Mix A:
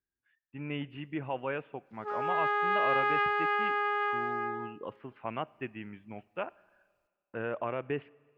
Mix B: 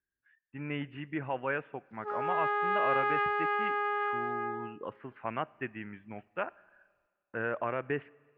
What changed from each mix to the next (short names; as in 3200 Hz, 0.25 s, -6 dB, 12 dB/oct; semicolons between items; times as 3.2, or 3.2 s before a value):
speech: add bell 1700 Hz +9 dB 0.95 oct; master: add high shelf 3000 Hz -9.5 dB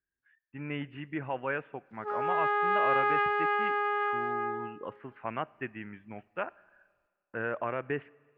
background: send +8.5 dB